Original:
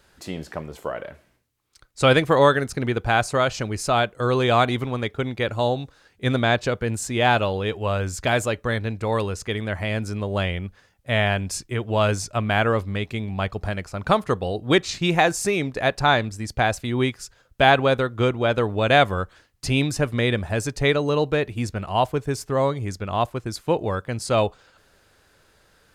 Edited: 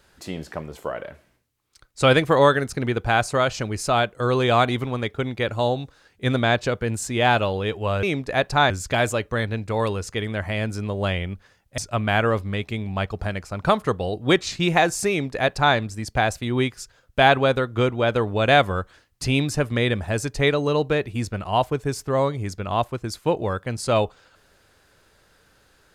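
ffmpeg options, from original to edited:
ffmpeg -i in.wav -filter_complex "[0:a]asplit=4[link_01][link_02][link_03][link_04];[link_01]atrim=end=8.032[link_05];[link_02]atrim=start=15.508:end=16.182[link_06];[link_03]atrim=start=8.028:end=11.112[link_07];[link_04]atrim=start=12.198[link_08];[link_05][link_06]acrossfade=duration=0.004:curve1=hsin:curve2=hsin[link_09];[link_09][link_07]acrossfade=duration=0.004:curve1=hsin:curve2=hsin[link_10];[link_10][link_08]acrossfade=duration=0.004:curve1=hsin:curve2=hsin" out.wav

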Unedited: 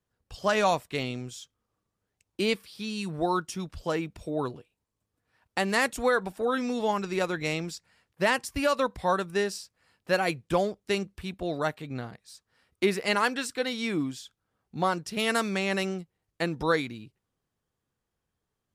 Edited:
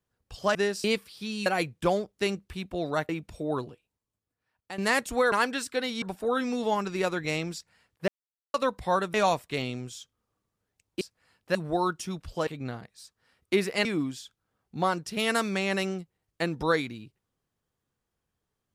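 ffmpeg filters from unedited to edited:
ffmpeg -i in.wav -filter_complex "[0:a]asplit=15[link_01][link_02][link_03][link_04][link_05][link_06][link_07][link_08][link_09][link_10][link_11][link_12][link_13][link_14][link_15];[link_01]atrim=end=0.552[link_16];[link_02]atrim=start=9.308:end=9.602[link_17];[link_03]atrim=start=2.418:end=3.042[link_18];[link_04]atrim=start=10.138:end=11.772[link_19];[link_05]atrim=start=3.958:end=5.65,asetpts=PTS-STARTPTS,afade=type=out:start_time=0.592:duration=1.1:curve=qua:silence=0.251189[link_20];[link_06]atrim=start=5.65:end=6.192,asetpts=PTS-STARTPTS,afade=type=in:duration=0.004:curve=hsin:silence=0.251189[link_21];[link_07]atrim=start=13.148:end=13.852[link_22];[link_08]atrim=start=6.188:end=8.25,asetpts=PTS-STARTPTS,afade=type=out:start_time=2.058:duration=0.004:curve=hsin[link_23];[link_09]atrim=start=8.25:end=8.71,asetpts=PTS-STARTPTS,volume=0[link_24];[link_10]atrim=start=8.71:end=9.312,asetpts=PTS-STARTPTS,afade=type=in:duration=0.004:curve=hsin[link_25];[link_11]atrim=start=0.548:end=2.422[link_26];[link_12]atrim=start=9.598:end=10.142[link_27];[link_13]atrim=start=3.038:end=3.962[link_28];[link_14]atrim=start=11.768:end=13.152[link_29];[link_15]atrim=start=13.848[link_30];[link_16][link_17]acrossfade=duration=0.004:curve1=hsin:curve2=hsin[link_31];[link_31][link_18]acrossfade=duration=0.004:curve1=hsin:curve2=hsin[link_32];[link_32][link_19]acrossfade=duration=0.004:curve1=hsin:curve2=hsin[link_33];[link_20][link_21]concat=n=2:v=0:a=1[link_34];[link_33][link_34]acrossfade=duration=0.004:curve1=hsin:curve2=hsin[link_35];[link_35][link_22]acrossfade=duration=0.004:curve1=hsin:curve2=hsin[link_36];[link_23][link_24][link_25]concat=n=3:v=0:a=1[link_37];[link_36][link_37]acrossfade=duration=0.004:curve1=hsin:curve2=hsin[link_38];[link_38][link_26]acrossfade=duration=0.004:curve1=hsin:curve2=hsin[link_39];[link_39][link_27]acrossfade=duration=0.004:curve1=hsin:curve2=hsin[link_40];[link_40][link_28]acrossfade=duration=0.004:curve1=hsin:curve2=hsin[link_41];[link_41][link_29]acrossfade=duration=0.004:curve1=hsin:curve2=hsin[link_42];[link_42][link_30]acrossfade=duration=0.004:curve1=hsin:curve2=hsin" out.wav

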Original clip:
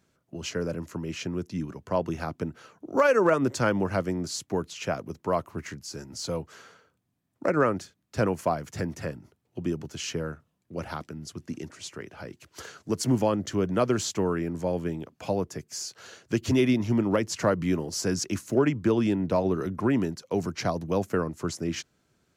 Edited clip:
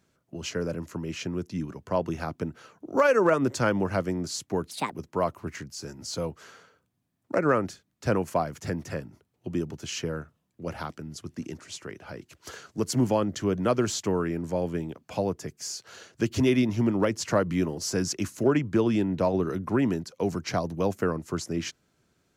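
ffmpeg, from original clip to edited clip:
ffmpeg -i in.wav -filter_complex "[0:a]asplit=3[link_01][link_02][link_03];[link_01]atrim=end=4.714[link_04];[link_02]atrim=start=4.71:end=5.03,asetpts=PTS-STARTPTS,asetrate=67914,aresample=44100[link_05];[link_03]atrim=start=5.026[link_06];[link_04][link_05]acrossfade=duration=0.004:curve1=hsin:curve2=hsin[link_07];[link_07][link_06]acrossfade=duration=0.004:curve1=hsin:curve2=hsin" out.wav

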